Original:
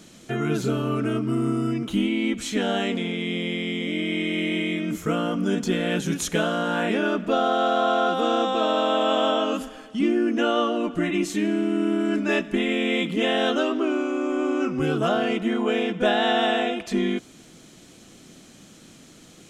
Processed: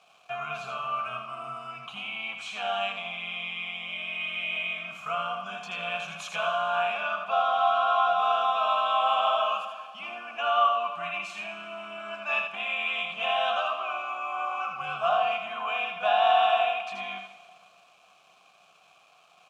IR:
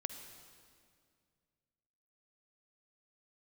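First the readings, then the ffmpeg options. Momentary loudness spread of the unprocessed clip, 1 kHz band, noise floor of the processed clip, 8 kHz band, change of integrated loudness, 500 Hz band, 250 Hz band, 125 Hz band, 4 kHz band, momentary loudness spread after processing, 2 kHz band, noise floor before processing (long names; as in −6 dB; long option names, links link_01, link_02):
5 LU, +2.0 dB, −60 dBFS, below −10 dB, −4.0 dB, −7.5 dB, −30.0 dB, below −20 dB, −3.5 dB, 13 LU, −2.0 dB, −49 dBFS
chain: -filter_complex "[0:a]acontrast=81,firequalizer=gain_entry='entry(180,0);entry(280,-28);entry(590,-7);entry(940,7)':delay=0.05:min_phase=1,asplit=2[link_01][link_02];[1:a]atrim=start_sample=2205,adelay=81[link_03];[link_02][link_03]afir=irnorm=-1:irlink=0,volume=-4dB[link_04];[link_01][link_04]amix=inputs=2:normalize=0,aeval=exprs='val(0)*gte(abs(val(0)),0.0188)':channel_layout=same,asplit=3[link_05][link_06][link_07];[link_05]bandpass=frequency=730:width_type=q:width=8,volume=0dB[link_08];[link_06]bandpass=frequency=1090:width_type=q:width=8,volume=-6dB[link_09];[link_07]bandpass=frequency=2440:width_type=q:width=8,volume=-9dB[link_10];[link_08][link_09][link_10]amix=inputs=3:normalize=0,volume=-1.5dB"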